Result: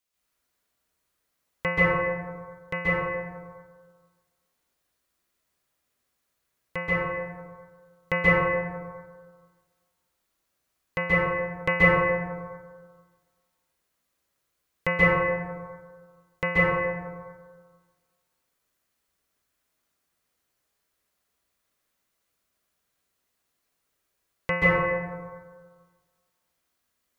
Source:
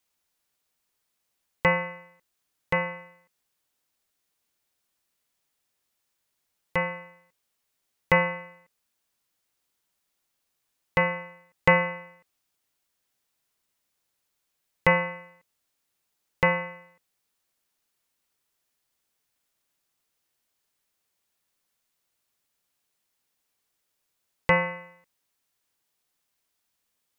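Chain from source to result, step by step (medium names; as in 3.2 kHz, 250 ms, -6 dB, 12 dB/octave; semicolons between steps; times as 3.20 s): band-stop 880 Hz, Q 12; plate-style reverb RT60 1.6 s, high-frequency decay 0.3×, pre-delay 120 ms, DRR -9 dB; trim -6 dB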